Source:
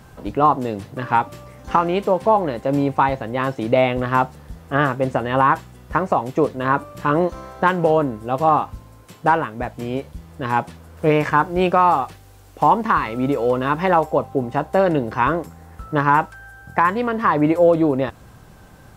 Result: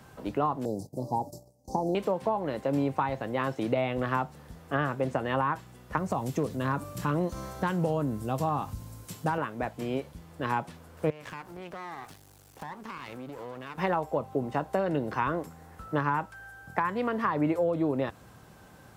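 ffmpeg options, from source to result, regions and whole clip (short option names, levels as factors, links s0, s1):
-filter_complex "[0:a]asettb=1/sr,asplit=3[s0][s1][s2];[s0]atrim=end=0.654[s3];[s1]atrim=start=0.65:end=1.95,asetpts=PTS-STARTPTS,afade=t=in:d=0.004:c=qsin,afade=t=out:st=1.296:d=0.004:c=qsin,bass=f=250:g=1,treble=f=4000:g=4,agate=range=0.126:threshold=0.0126:ratio=16:release=100:detection=peak,asuperstop=centerf=2000:order=12:qfactor=0.53[s4];[s2]atrim=start=1.946[s5];[s3][s4]acrossfade=d=0.004:c1=hsin:c2=qsin[s6];[s6][s5]acrossfade=d=0.004:c1=qsin:c2=hsin,asettb=1/sr,asplit=3[s7][s8][s9];[s7]atrim=end=5.974[s10];[s8]atrim=start=5.97:end=9.38,asetpts=PTS-STARTPTS,afade=t=in:d=0.004:c=qsin,afade=t=out:st=3.406:d=0.004:c=qsin,bass=f=250:g=11,treble=f=4000:g=11,acompressor=threshold=0.0501:ratio=1.5:attack=3.2:release=140:knee=1:detection=peak,asoftclip=type=hard:threshold=0.282[s11];[s9]atrim=start=9.376[s12];[s10][s11]acrossfade=d=0.004:c1=hsin:c2=qsin[s13];[s13][s12]acrossfade=d=0.004:c1=qsin:c2=hsin,asettb=1/sr,asplit=3[s14][s15][s16];[s14]atrim=end=11.104[s17];[s15]atrim=start=11.1:end=13.78,asetpts=PTS-STARTPTS,afade=t=in:d=0.004:c=qsin,afade=t=out:st=2.676:d=0.004:c=qsin,bass=f=250:g=3,treble=f=4000:g=6,acompressor=threshold=0.0447:ratio=10:attack=3.2:release=140:knee=1:detection=peak,aeval=exprs='max(val(0),0)':c=same[s18];[s16]atrim=start=13.776[s19];[s17][s18]acrossfade=d=0.004:c1=hsin:c2=qsin[s20];[s20][s19]acrossfade=d=0.004:c1=qsin:c2=hsin,highpass=f=130:p=1,acrossover=split=180[s21][s22];[s22]acompressor=threshold=0.1:ratio=5[s23];[s21][s23]amix=inputs=2:normalize=0,volume=0.562"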